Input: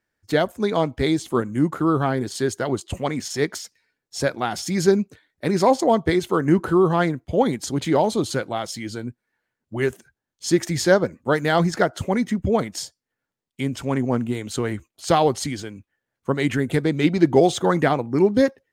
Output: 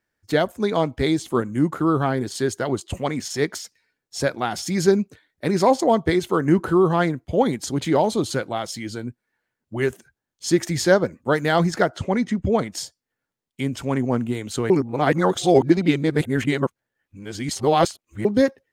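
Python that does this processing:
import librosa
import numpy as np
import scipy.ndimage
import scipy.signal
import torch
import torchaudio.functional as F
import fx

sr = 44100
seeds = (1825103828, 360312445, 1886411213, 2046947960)

y = fx.lowpass(x, sr, hz=fx.line((11.96, 6000.0), (12.7, 10000.0)), slope=12, at=(11.96, 12.7), fade=0.02)
y = fx.edit(y, sr, fx.reverse_span(start_s=14.7, length_s=3.55), tone=tone)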